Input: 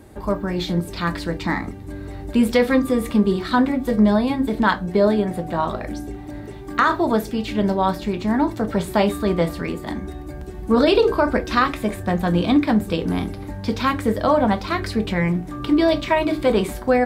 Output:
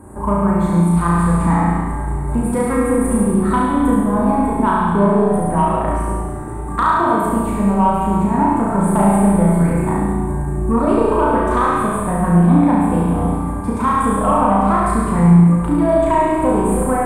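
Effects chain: FFT filter 100 Hz 0 dB, 170 Hz +4 dB, 330 Hz -2 dB, 660 Hz -2 dB, 990 Hz +8 dB, 3.2 kHz -21 dB, 5.3 kHz -25 dB, 8.8 kHz +8 dB, 13 kHz -9 dB; compression 3:1, threshold -21 dBFS, peak gain reduction 9.5 dB; saturation -11 dBFS, distortion -26 dB; flutter echo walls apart 6 m, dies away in 1 s; reverberation RT60 1.3 s, pre-delay 30 ms, DRR 0.5 dB; trim +3.5 dB

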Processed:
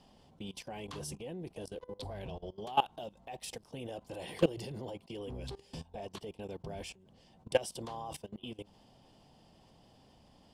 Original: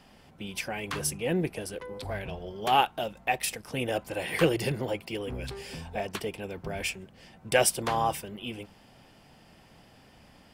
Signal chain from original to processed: Bessel low-pass 8.3 kHz, order 2; level held to a coarse grid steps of 20 dB; high-order bell 1.8 kHz -9.5 dB 1.2 oct; trim -1.5 dB

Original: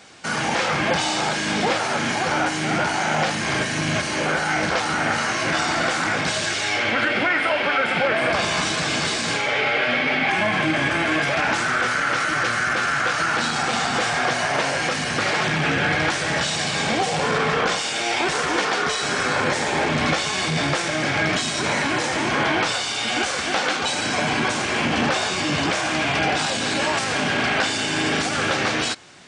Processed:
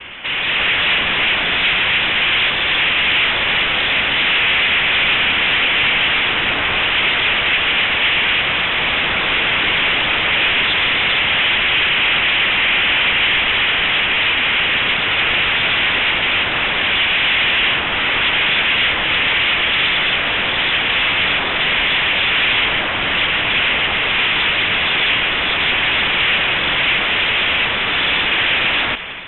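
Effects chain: high-pass 250 Hz; in parallel at -10 dB: sample-and-hold 37×; on the sum: noise-vocoded speech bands 3; overdrive pedal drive 33 dB, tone 2.2 kHz, clips at -5.5 dBFS; bass shelf 410 Hz -5 dB; frequency inversion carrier 3.8 kHz; level rider; trim -6 dB

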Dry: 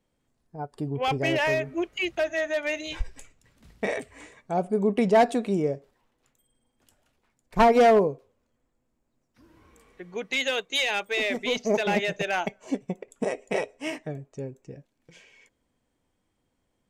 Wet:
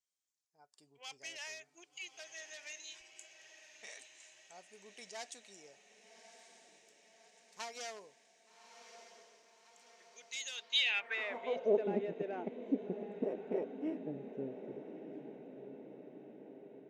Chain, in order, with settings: echo that smears into a reverb 1183 ms, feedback 60%, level -10.5 dB; band-pass sweep 6.3 kHz -> 320 Hz, 10.51–11.86 s; trim -2.5 dB

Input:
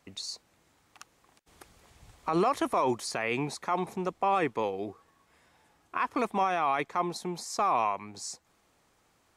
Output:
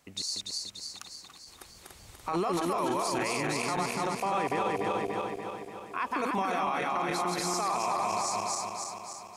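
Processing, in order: backward echo that repeats 145 ms, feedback 75%, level -1.5 dB; treble shelf 4 kHz +6.5 dB; peak limiter -21 dBFS, peak gain reduction 10.5 dB

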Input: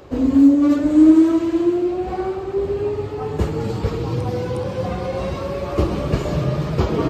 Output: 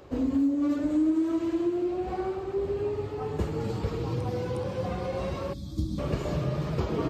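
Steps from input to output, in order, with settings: time-frequency box 5.53–5.99 s, 330–3200 Hz -24 dB; compression 3:1, threshold -17 dBFS, peak gain reduction 8 dB; trim -7 dB

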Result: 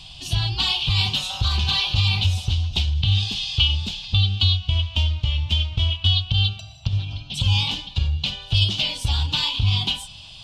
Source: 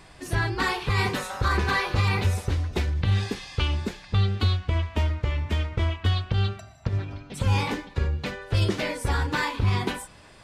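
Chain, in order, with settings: FFT filter 130 Hz 0 dB, 450 Hz -22 dB, 770 Hz -6 dB, 1.9 kHz -20 dB, 3 kHz +14 dB, 9.8 kHz -7 dB; in parallel at +2.5 dB: compression, threshold -30 dBFS, peak gain reduction 13.5 dB

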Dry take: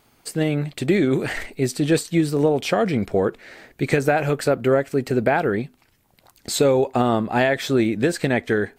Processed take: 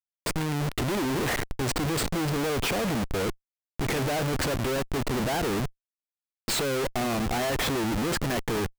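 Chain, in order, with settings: Schmitt trigger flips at -30 dBFS; trim -5.5 dB

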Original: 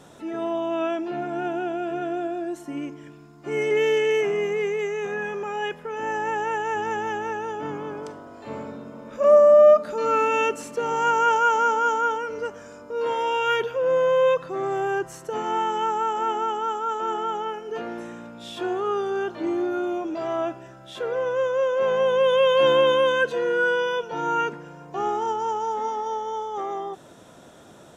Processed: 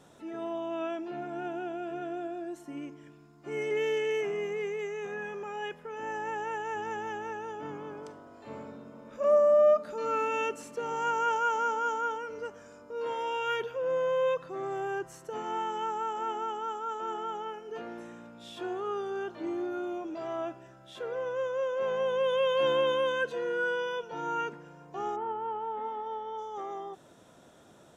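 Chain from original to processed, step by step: 25.15–26.37 s: low-pass 2.3 kHz -> 4.1 kHz 24 dB/octave; trim -8.5 dB

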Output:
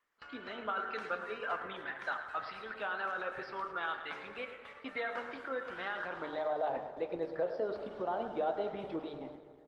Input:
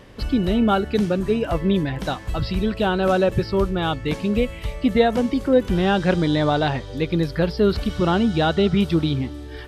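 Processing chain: gate with hold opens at -21 dBFS; 4.41–4.96 s: high-pass 90 Hz 12 dB/octave; bass shelf 250 Hz -11.5 dB; de-hum 151.5 Hz, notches 37; band-pass sweep 1.4 kHz -> 650 Hz, 5.90–6.54 s; peak limiter -25 dBFS, peak gain reduction 11 dB; wow and flutter 49 cents; harmonic-percussive split harmonic -4 dB; feedback delay 108 ms, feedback 53%, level -12 dB; on a send at -7 dB: reverberation RT60 1.9 s, pre-delay 5 ms; on the sum: Opus 20 kbps 48 kHz

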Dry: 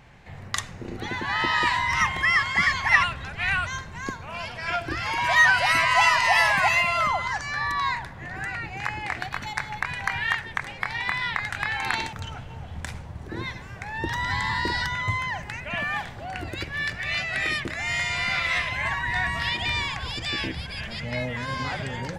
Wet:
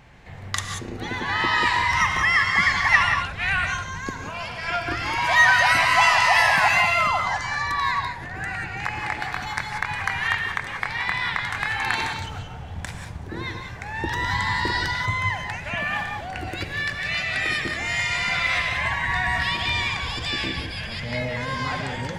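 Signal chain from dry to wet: gated-style reverb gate 210 ms rising, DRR 4 dB; trim +1 dB

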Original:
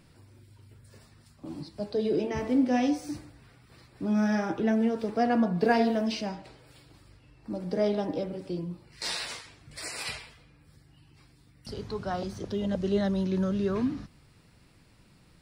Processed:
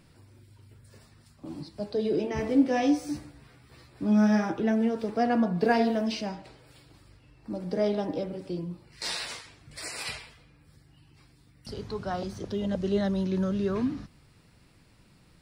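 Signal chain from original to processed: 2.37–4.50 s: doubling 14 ms -4 dB

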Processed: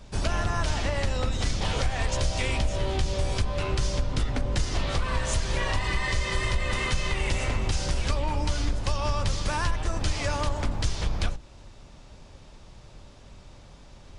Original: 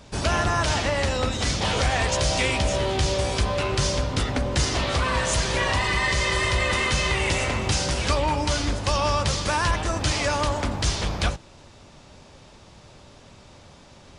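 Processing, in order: octave divider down 2 oct, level -1 dB; bass shelf 74 Hz +9.5 dB; compression 4:1, threshold -17 dBFS, peak gain reduction 7 dB; trim -4.5 dB

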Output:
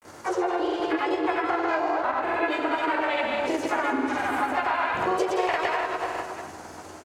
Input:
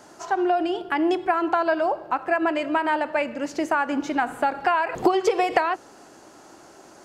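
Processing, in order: backward echo that repeats 220 ms, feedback 41%, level -9 dB; doubling 19 ms -4 dB; bouncing-ball echo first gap 110 ms, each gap 0.7×, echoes 5; dynamic bell 2 kHz, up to +4 dB, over -30 dBFS, Q 2.3; granulator, pitch spread up and down by 0 st; compression 4:1, threshold -26 dBFS, peak gain reduction 11.5 dB; harmony voices +4 st -9 dB, +7 st -9 dB; peaking EQ 87 Hz +14 dB 0.54 oct; trim +1.5 dB

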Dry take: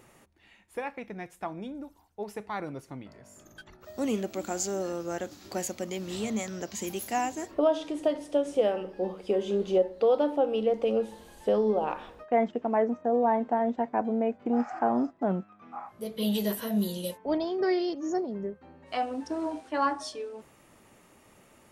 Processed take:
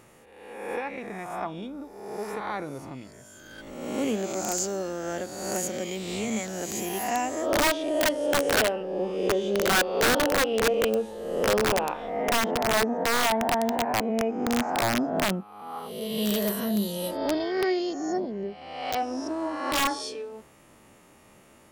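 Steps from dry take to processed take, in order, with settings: reverse spectral sustain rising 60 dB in 1.18 s; integer overflow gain 16.5 dB

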